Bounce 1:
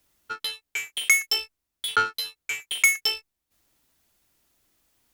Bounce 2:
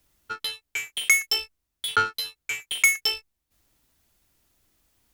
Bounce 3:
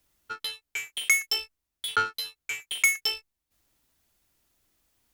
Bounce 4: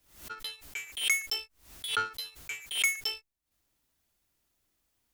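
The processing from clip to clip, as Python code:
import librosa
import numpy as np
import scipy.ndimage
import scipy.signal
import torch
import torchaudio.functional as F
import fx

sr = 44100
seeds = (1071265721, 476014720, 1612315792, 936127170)

y1 = fx.low_shelf(x, sr, hz=130.0, db=8.5)
y2 = fx.low_shelf(y1, sr, hz=240.0, db=-3.5)
y2 = y2 * librosa.db_to_amplitude(-3.0)
y3 = fx.pre_swell(y2, sr, db_per_s=110.0)
y3 = y3 * librosa.db_to_amplitude(-5.5)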